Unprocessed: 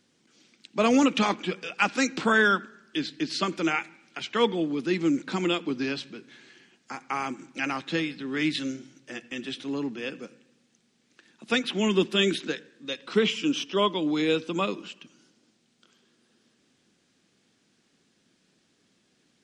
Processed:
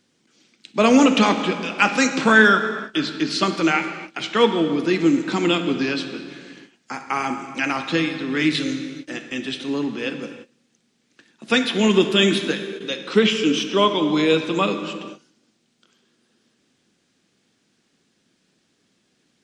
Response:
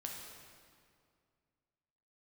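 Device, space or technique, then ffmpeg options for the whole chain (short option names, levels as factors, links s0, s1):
keyed gated reverb: -filter_complex "[0:a]asplit=3[s0][s1][s2];[1:a]atrim=start_sample=2205[s3];[s1][s3]afir=irnorm=-1:irlink=0[s4];[s2]apad=whole_len=857049[s5];[s4][s5]sidechaingate=range=0.0224:threshold=0.00178:ratio=16:detection=peak,volume=1.26[s6];[s0][s6]amix=inputs=2:normalize=0,volume=1.19"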